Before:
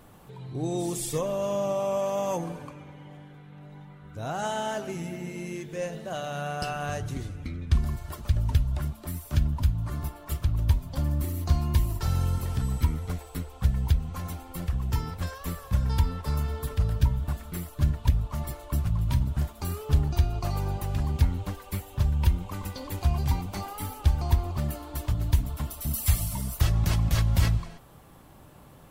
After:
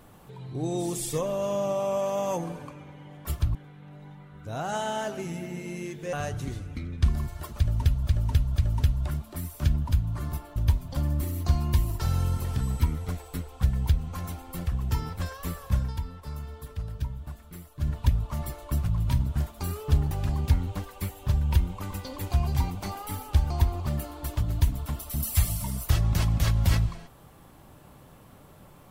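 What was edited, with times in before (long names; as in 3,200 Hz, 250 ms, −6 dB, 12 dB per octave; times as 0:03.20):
0:05.83–0:06.82: remove
0:08.27–0:08.76: repeat, 3 plays
0:10.27–0:10.57: move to 0:03.25
0:15.79–0:17.95: duck −9 dB, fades 0.15 s
0:20.12–0:20.82: remove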